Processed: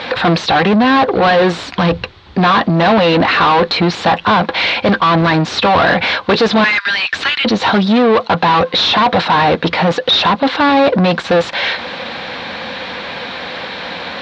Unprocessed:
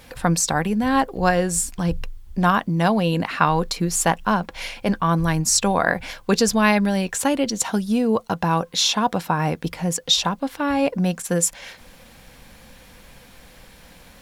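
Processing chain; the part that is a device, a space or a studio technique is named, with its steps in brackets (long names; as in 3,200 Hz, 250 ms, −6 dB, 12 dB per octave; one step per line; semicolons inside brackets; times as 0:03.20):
0:06.64–0:07.45: Butterworth high-pass 1,400 Hz 36 dB per octave
overdrive pedal into a guitar cabinet (mid-hump overdrive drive 36 dB, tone 1,700 Hz, clips at −2.5 dBFS; loudspeaker in its box 86–4,500 Hz, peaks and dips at 91 Hz +3 dB, 140 Hz −4 dB, 3,900 Hz +8 dB)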